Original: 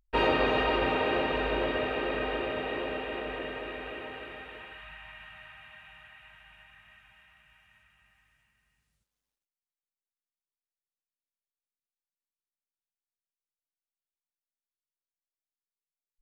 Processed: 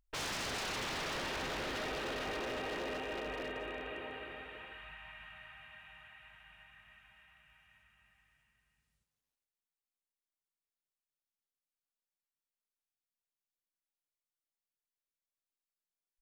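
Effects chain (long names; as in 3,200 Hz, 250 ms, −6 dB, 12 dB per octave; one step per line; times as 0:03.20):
single-tap delay 167 ms −13.5 dB
wave folding −30 dBFS
level −4 dB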